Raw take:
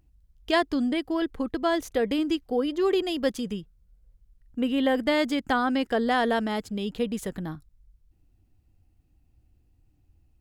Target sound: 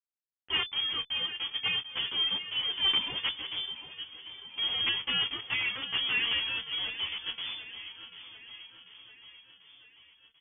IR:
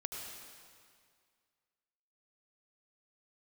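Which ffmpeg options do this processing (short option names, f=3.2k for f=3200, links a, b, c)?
-filter_complex "[0:a]aresample=16000,acrusher=bits=4:mix=0:aa=0.000001,aresample=44100,asplit=2[a][b];[b]adelay=26,volume=-11.5dB[c];[a][c]amix=inputs=2:normalize=0,aecho=1:1:741|1482|2223|2964|3705|4446:0.237|0.138|0.0798|0.0463|0.0268|0.0156,acontrast=50,aeval=exprs='(mod(2.66*val(0)+1,2)-1)/2.66':c=same,equalizer=f=110:w=0.32:g=-5,bandreject=f=510:w=12,lowpass=f=3k:t=q:w=0.5098,lowpass=f=3k:t=q:w=0.6013,lowpass=f=3k:t=q:w=0.9,lowpass=f=3k:t=q:w=2.563,afreqshift=-3500,equalizer=f=100:t=o:w=0.67:g=6,equalizer=f=630:t=o:w=0.67:g=-10,equalizer=f=1.6k:t=o:w=0.67:g=-6,asplit=2[d][e];[e]adelay=10.5,afreqshift=0.28[f];[d][f]amix=inputs=2:normalize=1,volume=-6dB"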